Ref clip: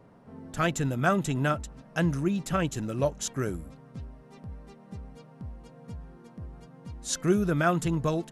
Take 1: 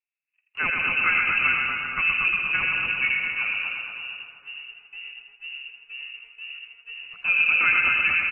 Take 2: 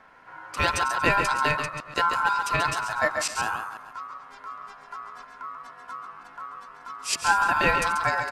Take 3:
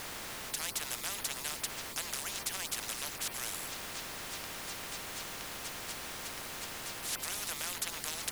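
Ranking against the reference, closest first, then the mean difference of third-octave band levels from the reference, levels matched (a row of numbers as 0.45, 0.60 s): 2, 1, 3; 10.5, 15.5, 21.0 dB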